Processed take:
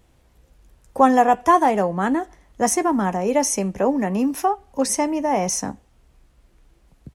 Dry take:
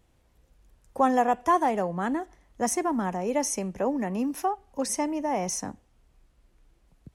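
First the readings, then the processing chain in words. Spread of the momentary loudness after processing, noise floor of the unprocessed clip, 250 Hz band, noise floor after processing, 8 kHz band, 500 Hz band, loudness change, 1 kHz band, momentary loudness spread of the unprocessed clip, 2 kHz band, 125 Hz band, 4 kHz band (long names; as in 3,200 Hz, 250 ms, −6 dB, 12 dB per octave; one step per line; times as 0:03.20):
8 LU, −65 dBFS, +7.0 dB, −59 dBFS, +7.0 dB, +7.0 dB, +7.5 dB, +7.5 dB, 9 LU, +7.5 dB, +7.0 dB, +7.0 dB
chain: double-tracking delay 15 ms −13.5 dB
level +7 dB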